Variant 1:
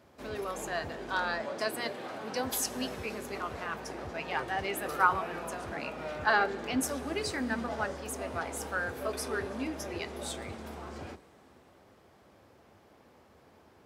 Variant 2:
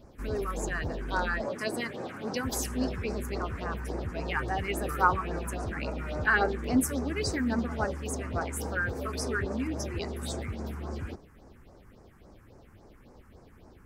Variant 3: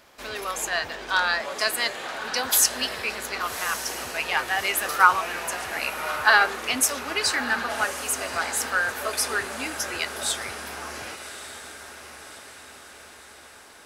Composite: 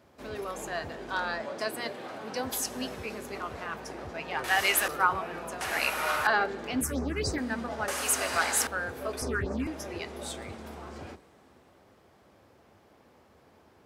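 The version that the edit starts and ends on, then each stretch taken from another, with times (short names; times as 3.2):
1
4.44–4.88 from 3
5.61–6.27 from 3
6.81–7.38 from 2
7.88–8.67 from 3
9.22–9.67 from 2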